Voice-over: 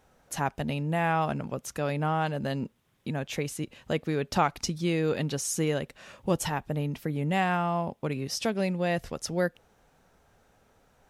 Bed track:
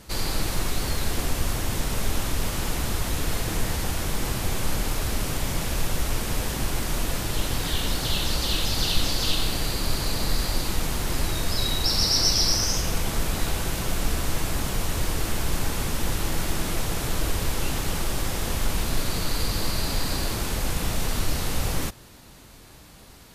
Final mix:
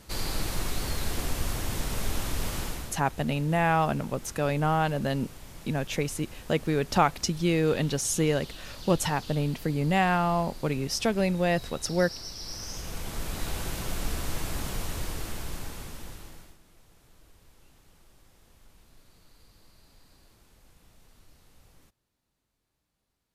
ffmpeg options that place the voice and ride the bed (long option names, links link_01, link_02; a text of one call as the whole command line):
ffmpeg -i stem1.wav -i stem2.wav -filter_complex "[0:a]adelay=2600,volume=2.5dB[link_01];[1:a]volume=8.5dB,afade=type=out:start_time=2.57:duration=0.41:silence=0.188365,afade=type=in:start_time=12.39:duration=1.21:silence=0.223872,afade=type=out:start_time=14.71:duration=1.87:silence=0.0473151[link_02];[link_01][link_02]amix=inputs=2:normalize=0" out.wav